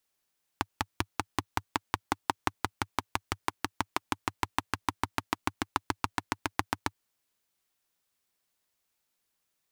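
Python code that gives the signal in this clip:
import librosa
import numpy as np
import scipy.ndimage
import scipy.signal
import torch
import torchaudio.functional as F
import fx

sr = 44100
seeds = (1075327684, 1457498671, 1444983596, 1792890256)

y = fx.engine_single_rev(sr, seeds[0], length_s=6.32, rpm=600, resonances_hz=(100.0, 290.0, 910.0), end_rpm=900)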